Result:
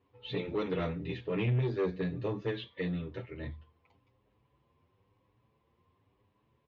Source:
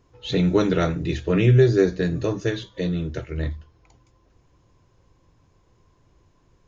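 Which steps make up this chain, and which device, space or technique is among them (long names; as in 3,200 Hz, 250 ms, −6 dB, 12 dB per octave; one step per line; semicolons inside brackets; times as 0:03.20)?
barber-pole flanger into a guitar amplifier (barber-pole flanger 7.9 ms +0.99 Hz; soft clipping −18 dBFS, distortion −12 dB; loudspeaker in its box 110–3,400 Hz, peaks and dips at 160 Hz −6 dB, 330 Hz −6 dB, 650 Hz −5 dB, 1,500 Hz −8 dB)
0:02.57–0:03.17: parametric band 3,000 Hz → 1,000 Hz +9.5 dB 0.55 octaves
level −3.5 dB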